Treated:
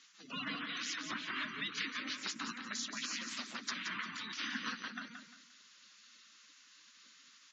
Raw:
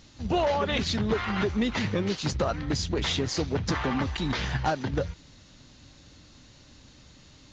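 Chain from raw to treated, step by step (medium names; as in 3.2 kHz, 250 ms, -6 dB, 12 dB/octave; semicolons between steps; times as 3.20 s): spectral gate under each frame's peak -15 dB weak; high-order bell 560 Hz -12.5 dB; spectral gate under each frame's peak -15 dB strong; ladder high-pass 200 Hz, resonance 40%; on a send: feedback delay 175 ms, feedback 30%, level -7 dB; on the sum: trim +5.5 dB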